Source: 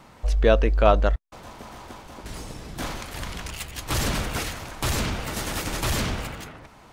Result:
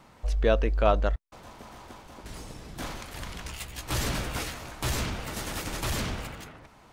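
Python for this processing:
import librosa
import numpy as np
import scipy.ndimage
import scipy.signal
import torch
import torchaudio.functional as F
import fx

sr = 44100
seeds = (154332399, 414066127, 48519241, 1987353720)

y = fx.doubler(x, sr, ms=16.0, db=-6.5, at=(3.44, 5.04))
y = F.gain(torch.from_numpy(y), -5.0).numpy()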